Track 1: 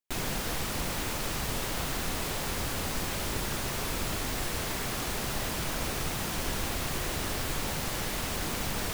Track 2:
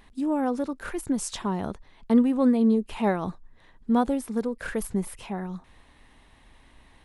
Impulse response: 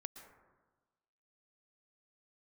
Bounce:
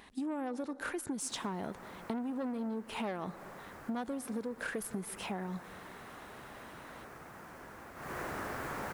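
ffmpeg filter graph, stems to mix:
-filter_complex "[0:a]highshelf=f=2300:t=q:w=1.5:g=-12.5,adelay=1150,volume=0.841,afade=t=in:st=7.95:d=0.27:silence=0.237137[s0];[1:a]asoftclip=type=tanh:threshold=0.0841,volume=1.06,asplit=2[s1][s2];[s2]volume=0.473[s3];[2:a]atrim=start_sample=2205[s4];[s3][s4]afir=irnorm=-1:irlink=0[s5];[s0][s1][s5]amix=inputs=3:normalize=0,highpass=f=240:p=1,acompressor=threshold=0.0178:ratio=6"

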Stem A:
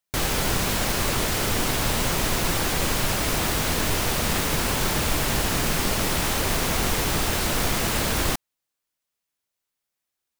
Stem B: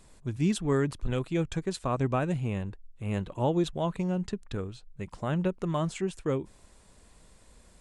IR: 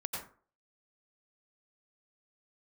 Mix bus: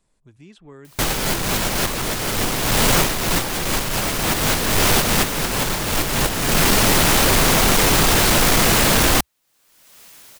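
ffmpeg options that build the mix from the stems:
-filter_complex "[0:a]aeval=exprs='0.335*sin(PI/2*2.82*val(0)/0.335)':c=same,acompressor=mode=upward:threshold=0.0891:ratio=2.5,adelay=850,volume=0.501[s0];[1:a]acrossover=split=370|4500[s1][s2][s3];[s1]acompressor=threshold=0.0158:ratio=4[s4];[s2]acompressor=threshold=0.02:ratio=4[s5];[s3]acompressor=threshold=0.00158:ratio=4[s6];[s4][s5][s6]amix=inputs=3:normalize=0,volume=0.251,asplit=2[s7][s8];[s8]apad=whole_len=495915[s9];[s0][s9]sidechaincompress=threshold=0.00355:ratio=8:attack=16:release=371[s10];[s10][s7]amix=inputs=2:normalize=0,dynaudnorm=f=140:g=11:m=1.78,equalizer=f=66:w=5.1:g=-14.5"

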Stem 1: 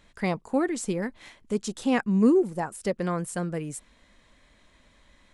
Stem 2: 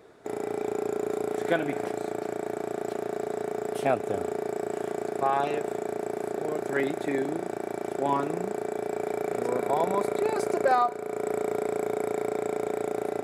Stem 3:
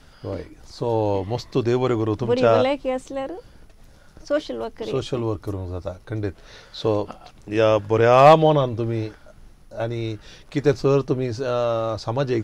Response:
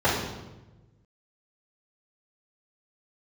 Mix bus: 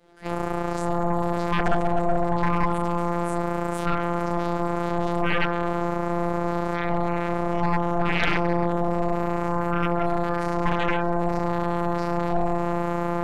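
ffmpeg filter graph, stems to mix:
-filter_complex "[0:a]aecho=1:1:7.1:0.78,volume=0.531,asplit=2[s0][s1];[1:a]volume=0.891,asplit=2[s2][s3];[s3]volume=0.224[s4];[2:a]equalizer=f=370:w=1.4:g=11.5,volume=0.15,asplit=2[s5][s6];[s6]volume=0.299[s7];[s1]apad=whole_len=583783[s8];[s2][s8]sidechaingate=range=0.0224:threshold=0.00112:ratio=16:detection=peak[s9];[s0][s9]amix=inputs=2:normalize=0,acompressor=threshold=0.0178:ratio=6,volume=1[s10];[3:a]atrim=start_sample=2205[s11];[s4][s7]amix=inputs=2:normalize=0[s12];[s12][s11]afir=irnorm=-1:irlink=0[s13];[s5][s10][s13]amix=inputs=3:normalize=0,afftfilt=real='hypot(re,im)*cos(PI*b)':imag='0':win_size=1024:overlap=0.75,aeval=exprs='0.75*(cos(1*acos(clip(val(0)/0.75,-1,1)))-cos(1*PI/2))+0.376*(cos(3*acos(clip(val(0)/0.75,-1,1)))-cos(3*PI/2))+0.299*(cos(8*acos(clip(val(0)/0.75,-1,1)))-cos(8*PI/2))':c=same,alimiter=limit=0.266:level=0:latency=1:release=20"

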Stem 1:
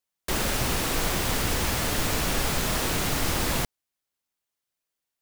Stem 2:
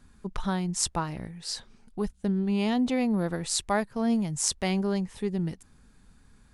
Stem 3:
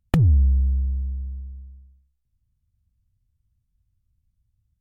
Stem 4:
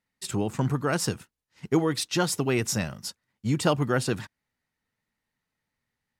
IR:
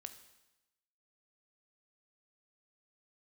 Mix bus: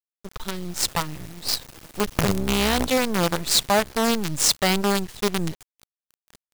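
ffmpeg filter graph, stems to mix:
-filter_complex "[0:a]equalizer=f=160:t=o:w=1.3:g=5.5,alimiter=limit=0.0708:level=0:latency=1:release=43,adelay=50,volume=0.126,asplit=2[s0][s1];[s1]volume=0.355[s2];[1:a]equalizer=f=125:t=o:w=1:g=7,equalizer=f=250:t=o:w=1:g=-6,equalizer=f=500:t=o:w=1:g=5,equalizer=f=4000:t=o:w=1:g=9,asoftclip=type=hard:threshold=0.141,volume=0.891,asplit=3[s3][s4][s5];[s4]volume=0.112[s6];[2:a]acompressor=threshold=0.0282:ratio=3,bandreject=f=1400:w=10,adelay=2050,volume=1.19,asplit=3[s7][s8][s9];[s7]atrim=end=2.87,asetpts=PTS-STARTPTS,afade=t=out:st=2.866:d=0.004:c=hsin[s10];[s8]atrim=start=2.87:end=3.77,asetpts=PTS-STARTPTS,volume=0[s11];[s9]atrim=start=3.77,asetpts=PTS-STARTPTS,afade=t=in:d=0.004:c=hsin[s12];[s10][s11][s12]concat=n=3:v=0:a=1,asplit=2[s13][s14];[s14]volume=0.422[s15];[3:a]acompressor=threshold=0.0355:ratio=6,asoftclip=type=tanh:threshold=0.015,volume=0.168[s16];[s5]apad=whole_len=302476[s17];[s13][s17]sidechaincompress=threshold=0.00501:ratio=6:attack=16:release=110[s18];[4:a]atrim=start_sample=2205[s19];[s6][s15]amix=inputs=2:normalize=0[s20];[s20][s19]afir=irnorm=-1:irlink=0[s21];[s2]aecho=0:1:517|1034|1551|2068|2585|3102|3619|4136:1|0.53|0.281|0.149|0.0789|0.0418|0.0222|0.0117[s22];[s0][s3][s18][s16][s21][s22]amix=inputs=6:normalize=0,dynaudnorm=f=310:g=7:m=1.88,acrusher=bits=4:dc=4:mix=0:aa=0.000001"

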